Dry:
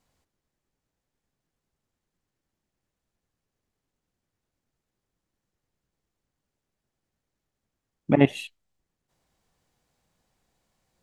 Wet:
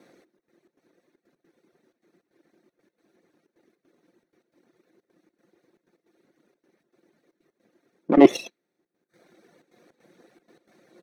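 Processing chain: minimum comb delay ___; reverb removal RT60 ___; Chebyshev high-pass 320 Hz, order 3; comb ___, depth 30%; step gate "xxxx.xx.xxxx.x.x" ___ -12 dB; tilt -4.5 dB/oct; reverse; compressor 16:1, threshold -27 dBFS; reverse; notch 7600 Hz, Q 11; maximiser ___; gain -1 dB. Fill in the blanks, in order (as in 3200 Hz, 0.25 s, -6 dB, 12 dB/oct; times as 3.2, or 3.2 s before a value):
0.5 ms, 0.88 s, 5.7 ms, 156 bpm, +23.5 dB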